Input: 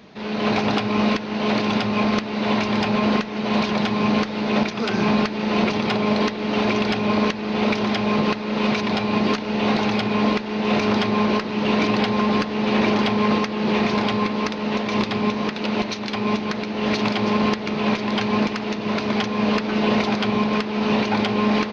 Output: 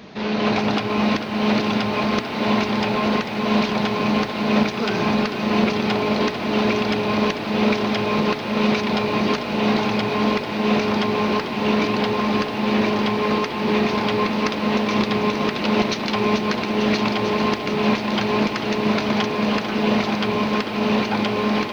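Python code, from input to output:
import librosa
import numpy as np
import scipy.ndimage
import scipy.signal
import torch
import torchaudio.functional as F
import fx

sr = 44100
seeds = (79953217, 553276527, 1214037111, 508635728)

y = fx.rider(x, sr, range_db=10, speed_s=0.5)
y = fx.echo_crushed(y, sr, ms=444, feedback_pct=80, bits=8, wet_db=-9.5)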